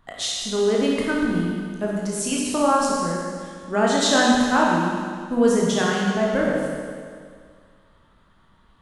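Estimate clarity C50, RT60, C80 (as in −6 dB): −1.0 dB, 2.0 s, 0.5 dB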